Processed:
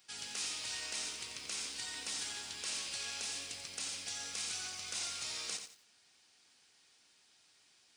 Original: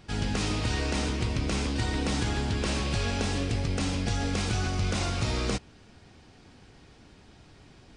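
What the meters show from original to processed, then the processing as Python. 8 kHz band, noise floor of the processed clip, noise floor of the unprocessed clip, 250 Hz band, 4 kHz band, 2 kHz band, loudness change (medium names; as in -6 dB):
0.0 dB, -68 dBFS, -55 dBFS, -29.0 dB, -4.5 dB, -10.0 dB, -9.5 dB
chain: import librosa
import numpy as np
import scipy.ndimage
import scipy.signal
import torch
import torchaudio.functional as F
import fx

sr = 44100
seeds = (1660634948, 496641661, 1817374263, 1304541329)

y = np.diff(x, prepend=0.0)
y = fx.echo_crushed(y, sr, ms=88, feedback_pct=35, bits=10, wet_db=-7.5)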